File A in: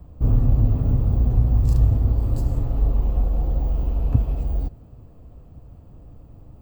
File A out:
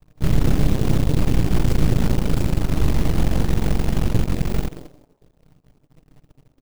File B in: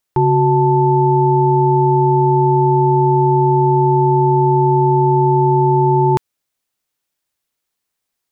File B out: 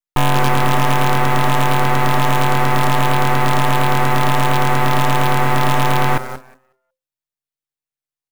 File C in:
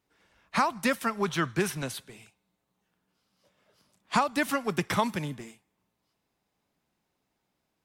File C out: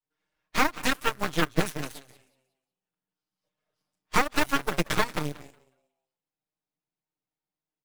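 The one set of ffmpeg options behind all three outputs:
-filter_complex "[0:a]aeval=exprs='if(lt(val(0),0),0.447*val(0),val(0))':c=same,adynamicequalizer=threshold=0.0178:dfrequency=200:dqfactor=1.5:tfrequency=200:tqfactor=1.5:attack=5:release=100:ratio=0.375:range=3:mode=cutabove:tftype=bell,aecho=1:1:6.5:0.95,asplit=2[a][b];[b]alimiter=limit=-14.5dB:level=0:latency=1:release=127,volume=-2dB[c];[a][c]amix=inputs=2:normalize=0,asplit=5[d][e][f][g][h];[e]adelay=182,afreqshift=130,volume=-10dB[i];[f]adelay=364,afreqshift=260,volume=-19.6dB[j];[g]adelay=546,afreqshift=390,volume=-29.3dB[k];[h]adelay=728,afreqshift=520,volume=-38.9dB[l];[d][i][j][k][l]amix=inputs=5:normalize=0,acrossover=split=4800[m][n];[m]acrusher=bits=5:mode=log:mix=0:aa=0.000001[o];[o][n]amix=inputs=2:normalize=0,aeval=exprs='0.891*(cos(1*acos(clip(val(0)/0.891,-1,1)))-cos(1*PI/2))+0.251*(cos(3*acos(clip(val(0)/0.891,-1,1)))-cos(3*PI/2))+0.355*(cos(6*acos(clip(val(0)/0.891,-1,1)))-cos(6*PI/2))':c=same,volume=-6.5dB"

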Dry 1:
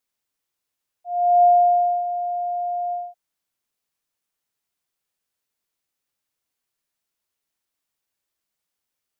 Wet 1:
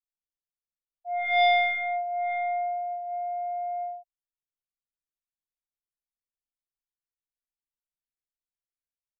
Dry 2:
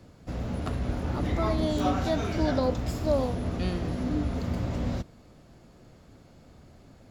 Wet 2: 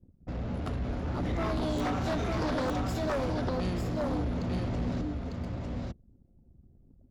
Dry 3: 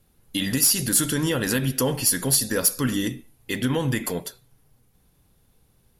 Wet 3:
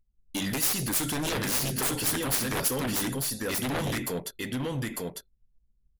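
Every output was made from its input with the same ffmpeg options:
-af "anlmdn=0.0631,aecho=1:1:900:0.631,aeval=exprs='0.447*(cos(1*acos(clip(val(0)/0.447,-1,1)))-cos(1*PI/2))+0.02*(cos(2*acos(clip(val(0)/0.447,-1,1)))-cos(2*PI/2))+0.112*(cos(3*acos(clip(val(0)/0.447,-1,1)))-cos(3*PI/2))+0.0158*(cos(4*acos(clip(val(0)/0.447,-1,1)))-cos(4*PI/2))+0.126*(cos(7*acos(clip(val(0)/0.447,-1,1)))-cos(7*PI/2))':c=same,volume=-6dB"

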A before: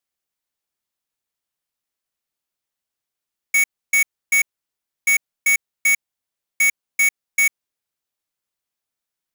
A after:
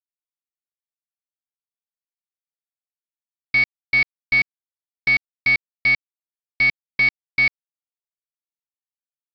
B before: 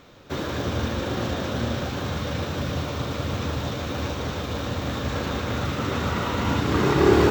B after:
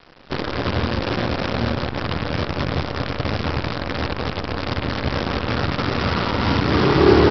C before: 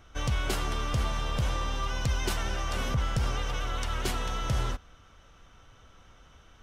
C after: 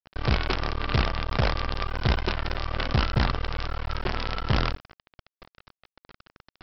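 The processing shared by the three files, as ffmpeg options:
-af "lowpass=2.1k,aresample=11025,acrusher=bits=5:dc=4:mix=0:aa=0.000001,aresample=44100,volume=4dB"

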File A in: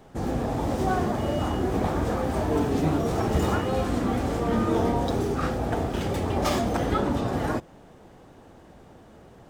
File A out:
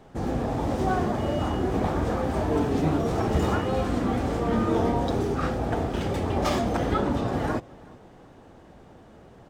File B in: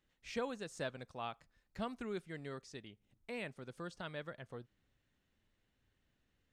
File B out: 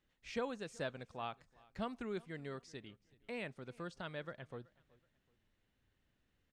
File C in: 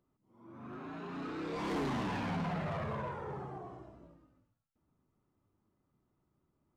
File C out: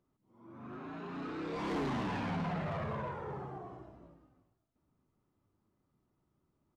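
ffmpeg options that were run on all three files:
-af "highshelf=f=8.3k:g=-8,aecho=1:1:376|752:0.0631|0.0208"

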